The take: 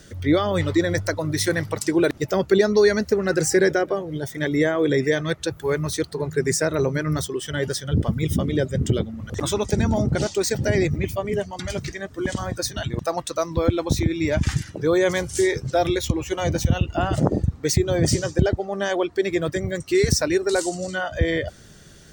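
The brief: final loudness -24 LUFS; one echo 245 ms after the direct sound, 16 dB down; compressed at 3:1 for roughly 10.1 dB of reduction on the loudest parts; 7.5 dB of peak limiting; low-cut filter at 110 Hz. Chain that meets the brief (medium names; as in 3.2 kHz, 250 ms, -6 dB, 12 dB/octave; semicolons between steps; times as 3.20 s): high-pass 110 Hz; compression 3:1, threshold -27 dBFS; peak limiter -21.5 dBFS; delay 245 ms -16 dB; trim +8 dB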